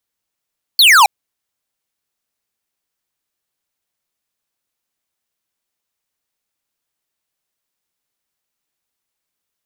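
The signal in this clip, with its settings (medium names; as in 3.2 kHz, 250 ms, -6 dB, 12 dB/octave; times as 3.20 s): laser zap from 4.6 kHz, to 760 Hz, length 0.27 s square, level -7.5 dB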